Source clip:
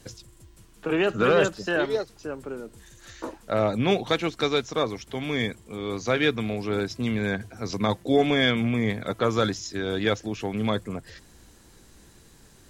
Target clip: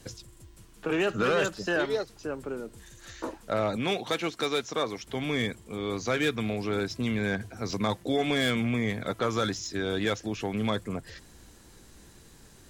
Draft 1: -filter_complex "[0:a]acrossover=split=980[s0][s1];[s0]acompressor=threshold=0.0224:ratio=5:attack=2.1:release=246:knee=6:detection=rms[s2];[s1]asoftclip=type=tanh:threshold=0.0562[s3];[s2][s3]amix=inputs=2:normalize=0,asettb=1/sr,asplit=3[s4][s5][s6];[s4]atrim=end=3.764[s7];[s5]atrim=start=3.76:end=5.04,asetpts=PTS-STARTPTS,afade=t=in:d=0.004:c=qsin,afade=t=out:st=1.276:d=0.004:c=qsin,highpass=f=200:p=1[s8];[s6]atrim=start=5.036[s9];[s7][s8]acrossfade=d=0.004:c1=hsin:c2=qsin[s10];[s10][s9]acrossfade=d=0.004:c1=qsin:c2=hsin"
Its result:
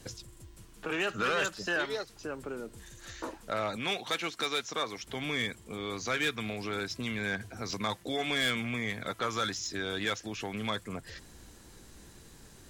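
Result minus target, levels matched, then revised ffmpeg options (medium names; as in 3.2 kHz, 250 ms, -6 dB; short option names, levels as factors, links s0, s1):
compression: peak gain reduction +9 dB
-filter_complex "[0:a]acrossover=split=980[s0][s1];[s0]acompressor=threshold=0.0794:ratio=5:attack=2.1:release=246:knee=6:detection=rms[s2];[s1]asoftclip=type=tanh:threshold=0.0562[s3];[s2][s3]amix=inputs=2:normalize=0,asettb=1/sr,asplit=3[s4][s5][s6];[s4]atrim=end=3.764[s7];[s5]atrim=start=3.76:end=5.04,asetpts=PTS-STARTPTS,afade=t=in:d=0.004:c=qsin,afade=t=out:st=1.276:d=0.004:c=qsin,highpass=f=200:p=1[s8];[s6]atrim=start=5.036[s9];[s7][s8]acrossfade=d=0.004:c1=hsin:c2=qsin[s10];[s10][s9]acrossfade=d=0.004:c1=qsin:c2=hsin"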